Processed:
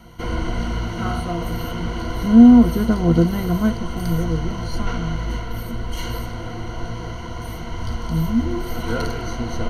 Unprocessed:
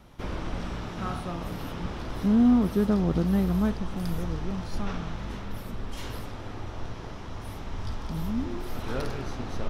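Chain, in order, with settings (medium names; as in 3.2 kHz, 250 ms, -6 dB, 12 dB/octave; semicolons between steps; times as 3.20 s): rippled EQ curve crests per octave 1.9, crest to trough 16 dB; trim +5.5 dB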